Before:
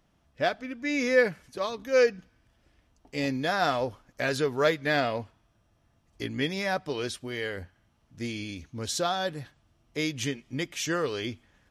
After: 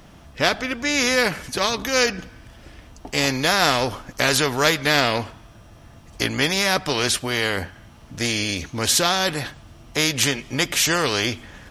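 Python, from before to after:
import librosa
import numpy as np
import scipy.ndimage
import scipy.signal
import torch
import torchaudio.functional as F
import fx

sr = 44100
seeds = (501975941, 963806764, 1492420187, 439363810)

y = fx.spectral_comp(x, sr, ratio=2.0)
y = y * 10.0 ** (7.5 / 20.0)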